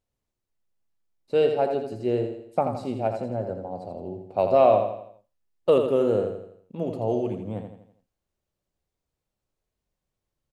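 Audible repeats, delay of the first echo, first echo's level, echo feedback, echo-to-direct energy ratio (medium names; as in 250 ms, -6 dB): 5, 83 ms, -7.0 dB, 45%, -6.0 dB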